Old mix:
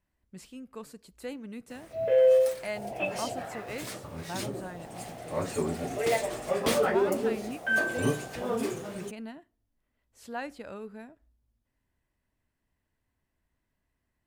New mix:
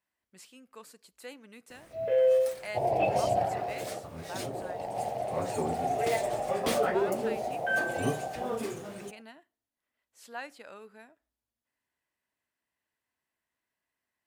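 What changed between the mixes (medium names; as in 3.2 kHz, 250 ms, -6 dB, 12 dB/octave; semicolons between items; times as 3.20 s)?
speech: add high-pass 940 Hz 6 dB/octave; first sound -3.0 dB; second sound +11.5 dB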